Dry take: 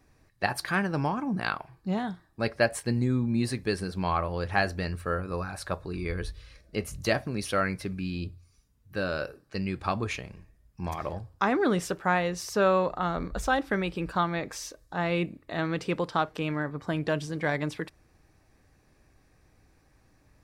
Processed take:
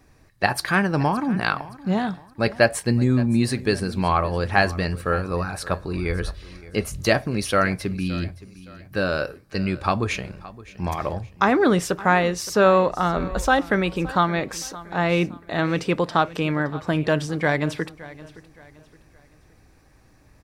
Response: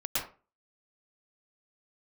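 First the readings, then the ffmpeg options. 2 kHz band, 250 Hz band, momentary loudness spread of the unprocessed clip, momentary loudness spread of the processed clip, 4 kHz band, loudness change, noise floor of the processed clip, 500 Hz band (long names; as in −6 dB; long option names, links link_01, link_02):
+7.0 dB, +7.0 dB, 10 LU, 10 LU, +7.0 dB, +7.0 dB, −55 dBFS, +7.0 dB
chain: -af "aecho=1:1:568|1136|1704:0.119|0.0416|0.0146,volume=7dB"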